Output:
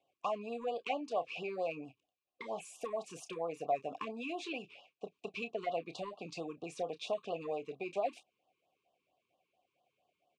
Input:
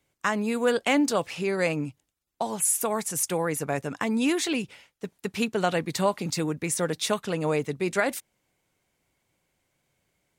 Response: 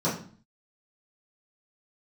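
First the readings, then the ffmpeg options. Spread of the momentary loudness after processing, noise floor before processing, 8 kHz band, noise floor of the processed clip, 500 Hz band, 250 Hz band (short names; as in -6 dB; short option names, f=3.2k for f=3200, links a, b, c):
9 LU, -77 dBFS, -26.5 dB, under -85 dBFS, -10.5 dB, -18.5 dB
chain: -filter_complex "[0:a]lowpass=6.9k,equalizer=f=1.4k:t=o:w=0.82:g=-14,acompressor=threshold=-32dB:ratio=5,asplit=3[a][b][c];[a]bandpass=f=730:t=q:w=8,volume=0dB[d];[b]bandpass=f=1.09k:t=q:w=8,volume=-6dB[e];[c]bandpass=f=2.44k:t=q:w=8,volume=-9dB[f];[d][e][f]amix=inputs=3:normalize=0,asoftclip=type=tanh:threshold=-34.5dB,asplit=2[g][h];[h]adelay=30,volume=-11dB[i];[g][i]amix=inputs=2:normalize=0,afftfilt=real='re*(1-between(b*sr/1024,610*pow(2000/610,0.5+0.5*sin(2*PI*4.4*pts/sr))/1.41,610*pow(2000/610,0.5+0.5*sin(2*PI*4.4*pts/sr))*1.41))':imag='im*(1-between(b*sr/1024,610*pow(2000/610,0.5+0.5*sin(2*PI*4.4*pts/sr))/1.41,610*pow(2000/610,0.5+0.5*sin(2*PI*4.4*pts/sr))*1.41))':win_size=1024:overlap=0.75,volume=12dB"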